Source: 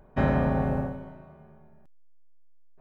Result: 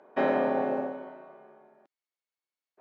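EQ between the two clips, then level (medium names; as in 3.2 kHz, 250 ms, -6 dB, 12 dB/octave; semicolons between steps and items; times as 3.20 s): high-pass 310 Hz 24 dB/octave; dynamic bell 1.3 kHz, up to -5 dB, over -42 dBFS, Q 1; distance through air 120 m; +4.5 dB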